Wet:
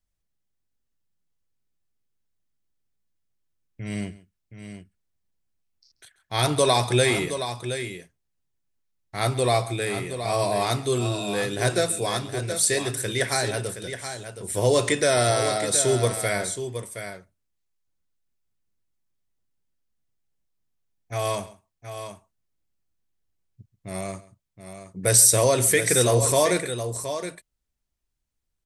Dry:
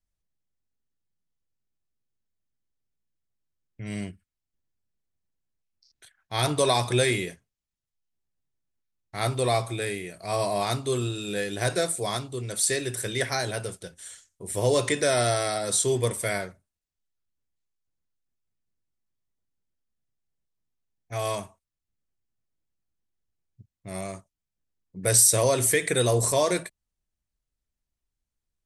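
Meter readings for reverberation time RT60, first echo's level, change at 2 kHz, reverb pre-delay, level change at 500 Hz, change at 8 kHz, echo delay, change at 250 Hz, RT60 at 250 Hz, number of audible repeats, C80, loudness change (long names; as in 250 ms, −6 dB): no reverb audible, −19.0 dB, +3.0 dB, no reverb audible, +3.0 dB, +3.0 dB, 135 ms, +3.0 dB, no reverb audible, 2, no reverb audible, +2.0 dB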